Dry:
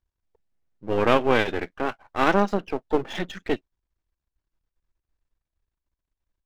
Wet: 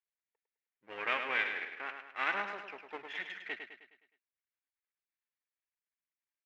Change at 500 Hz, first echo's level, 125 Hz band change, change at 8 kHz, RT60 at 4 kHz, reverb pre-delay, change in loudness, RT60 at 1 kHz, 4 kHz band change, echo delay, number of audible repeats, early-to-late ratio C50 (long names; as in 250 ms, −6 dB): −22.0 dB, −7.0 dB, below −30 dB, below −15 dB, no reverb audible, no reverb audible, −12.0 dB, no reverb audible, −9.5 dB, 104 ms, 5, no reverb audible